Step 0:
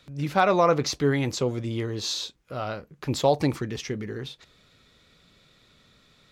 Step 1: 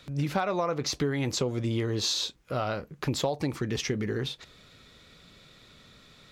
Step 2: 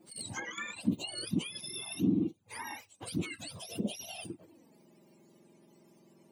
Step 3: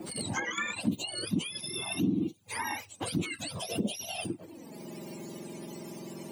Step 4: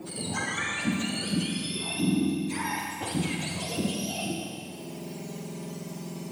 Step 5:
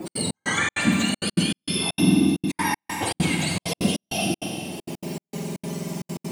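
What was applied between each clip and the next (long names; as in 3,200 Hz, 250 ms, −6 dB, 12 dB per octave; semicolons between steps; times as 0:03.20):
downward compressor 12 to 1, threshold −29 dBFS, peak gain reduction 14.5 dB; level +4.5 dB
frequency axis turned over on the octave scale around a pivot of 1,100 Hz; flanger swept by the level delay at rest 6.2 ms, full sweep at −25.5 dBFS; level −5 dB
multiband upward and downward compressor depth 70%; level +4.5 dB
convolution reverb RT60 2.4 s, pre-delay 35 ms, DRR −1.5 dB
gate pattern "x.xx..xxx.xxxxx." 197 BPM −60 dB; level +7.5 dB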